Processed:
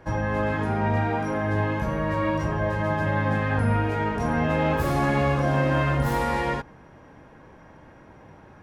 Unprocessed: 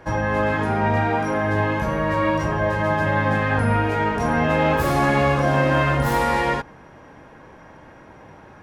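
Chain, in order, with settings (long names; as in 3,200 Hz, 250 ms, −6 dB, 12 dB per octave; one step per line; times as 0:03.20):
low-shelf EQ 320 Hz +5 dB
level −6 dB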